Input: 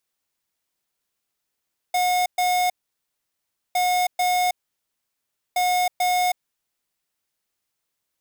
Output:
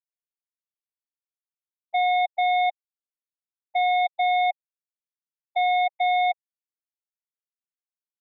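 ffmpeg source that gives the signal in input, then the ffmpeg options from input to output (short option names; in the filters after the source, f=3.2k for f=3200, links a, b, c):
-f lavfi -i "aevalsrc='0.0944*(2*lt(mod(724*t,1),0.5)-1)*clip(min(mod(mod(t,1.81),0.44),0.32-mod(mod(t,1.81),0.44))/0.005,0,1)*lt(mod(t,1.81),0.88)':d=5.43:s=44100"
-af "afftfilt=real='re*gte(hypot(re,im),0.178)':imag='im*gte(hypot(re,im),0.178)':win_size=1024:overlap=0.75"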